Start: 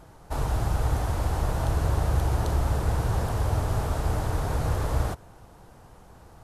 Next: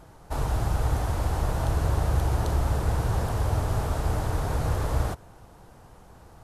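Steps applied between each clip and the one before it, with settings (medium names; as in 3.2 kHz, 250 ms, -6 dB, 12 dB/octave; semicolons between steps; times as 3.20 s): no audible change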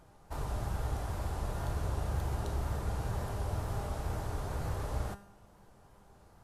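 wow and flutter 73 cents; feedback comb 200 Hz, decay 0.59 s, harmonics all, mix 70%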